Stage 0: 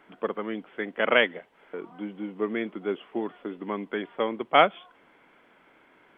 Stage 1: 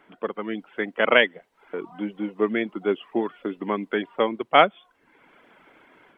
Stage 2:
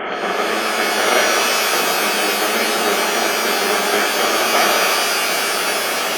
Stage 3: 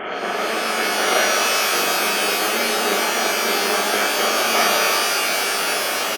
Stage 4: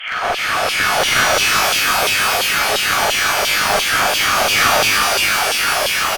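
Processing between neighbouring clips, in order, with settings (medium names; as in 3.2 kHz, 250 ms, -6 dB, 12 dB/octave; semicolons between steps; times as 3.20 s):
reverb removal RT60 0.61 s; level rider gain up to 6 dB
spectral levelling over time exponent 0.2; reverb removal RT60 1.6 s; pitch-shifted reverb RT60 3.5 s, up +12 st, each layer -2 dB, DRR -4.5 dB; trim -8.5 dB
doubling 40 ms -3.5 dB; trim -4.5 dB
LFO high-pass saw down 2.9 Hz 490–3300 Hz; one-sided clip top -21.5 dBFS; trim +4 dB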